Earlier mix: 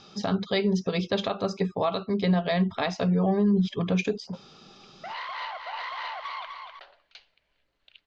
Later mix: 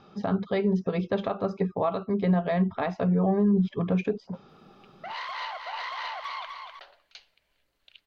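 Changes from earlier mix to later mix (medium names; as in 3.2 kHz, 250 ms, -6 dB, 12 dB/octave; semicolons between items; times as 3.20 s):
speech: add low-pass 1.7 kHz 12 dB/octave; master: remove low-pass 4.9 kHz 12 dB/octave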